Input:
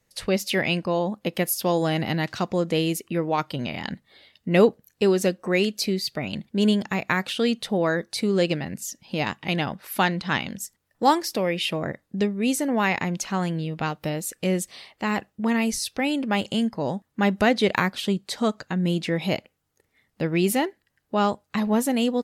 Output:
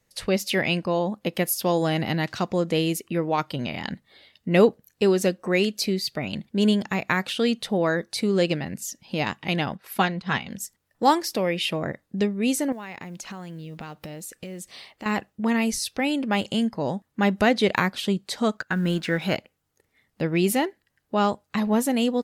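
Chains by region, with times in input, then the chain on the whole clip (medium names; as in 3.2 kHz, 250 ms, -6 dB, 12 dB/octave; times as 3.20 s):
9.75–10.51 s: treble shelf 4.5 kHz -4 dB + comb of notches 300 Hz + transient shaper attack +2 dB, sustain -7 dB
12.72–15.06 s: compression 10:1, threshold -33 dBFS + short-mantissa float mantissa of 4-bit
18.57–19.36 s: companding laws mixed up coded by A + peaking EQ 1.5 kHz +14 dB 0.4 oct
whole clip: none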